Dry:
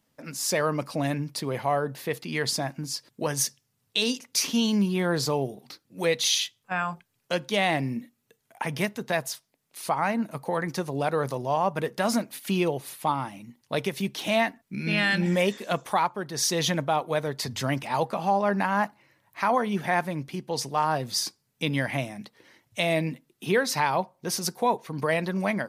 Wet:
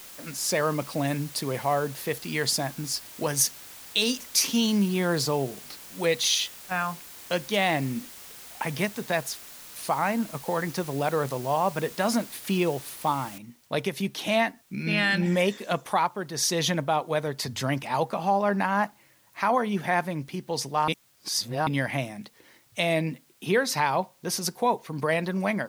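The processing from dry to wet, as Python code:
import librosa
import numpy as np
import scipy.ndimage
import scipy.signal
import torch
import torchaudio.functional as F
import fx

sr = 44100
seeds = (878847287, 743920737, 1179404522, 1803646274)

y = fx.high_shelf(x, sr, hz=6600.0, db=6.0, at=(1.07, 5.23))
y = fx.noise_floor_step(y, sr, seeds[0], at_s=13.38, before_db=-45, after_db=-63, tilt_db=0.0)
y = fx.edit(y, sr, fx.reverse_span(start_s=20.88, length_s=0.79), tone=tone)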